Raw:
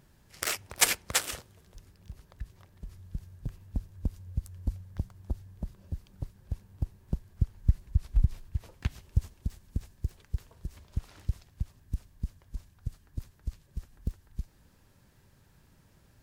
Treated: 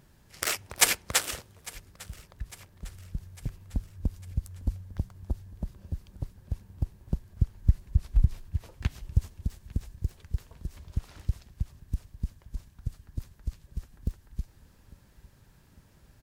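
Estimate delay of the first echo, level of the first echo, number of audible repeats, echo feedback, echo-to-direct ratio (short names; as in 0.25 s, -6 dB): 0.852 s, -21.0 dB, 3, 52%, -19.5 dB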